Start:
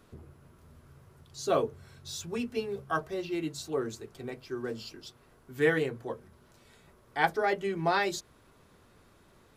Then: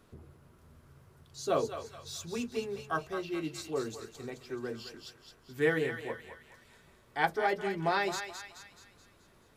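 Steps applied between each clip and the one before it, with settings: thinning echo 214 ms, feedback 52%, high-pass 970 Hz, level -6.5 dB; trim -2.5 dB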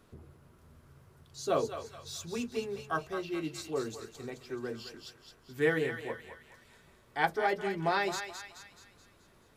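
no audible change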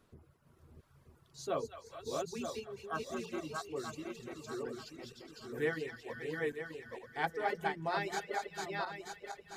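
backward echo that repeats 466 ms, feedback 61%, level -2 dB; reverb removal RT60 0.89 s; trim -6 dB

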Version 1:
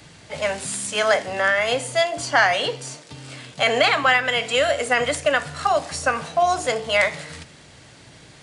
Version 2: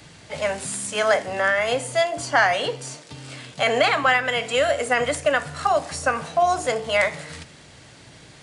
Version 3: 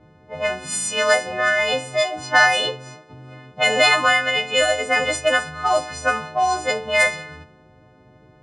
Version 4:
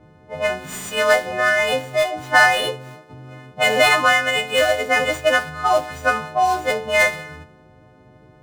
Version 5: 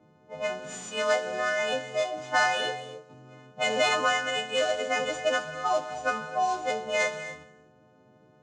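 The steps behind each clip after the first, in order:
dynamic bell 3.8 kHz, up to -4 dB, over -35 dBFS, Q 0.72
partials quantised in pitch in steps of 3 st; level-controlled noise filter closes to 620 Hz, open at -12 dBFS
median filter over 9 samples; trim +2 dB
cabinet simulation 160–7400 Hz, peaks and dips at 220 Hz +4 dB, 1.8 kHz -5 dB, 6.7 kHz +7 dB; reverberation, pre-delay 3 ms, DRR 11 dB; trim -9 dB

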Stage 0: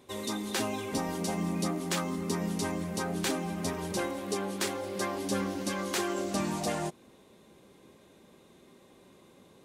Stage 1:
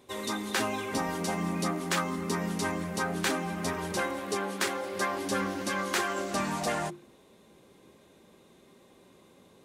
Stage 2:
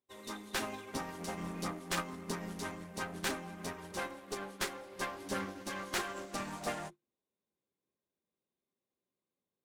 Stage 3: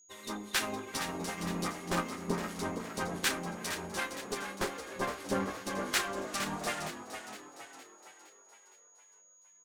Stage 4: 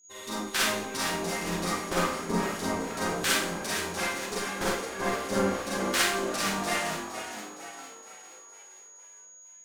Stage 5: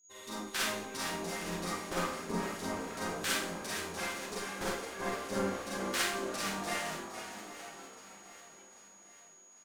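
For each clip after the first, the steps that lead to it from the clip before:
hum notches 50/100/150/200/250/300/350 Hz; dynamic bell 1.5 kHz, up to +7 dB, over -50 dBFS, Q 0.92
one-sided clip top -34 dBFS; upward expansion 2.5:1, over -51 dBFS; trim -2 dB
harmonic tremolo 2.6 Hz, depth 70%, crossover 1.2 kHz; frequency-shifting echo 463 ms, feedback 50%, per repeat +54 Hz, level -9 dB; whistle 6.7 kHz -66 dBFS; trim +7 dB
Schroeder reverb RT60 0.55 s, combs from 33 ms, DRR -5.5 dB
feedback delay 794 ms, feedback 50%, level -16 dB; trim -7 dB

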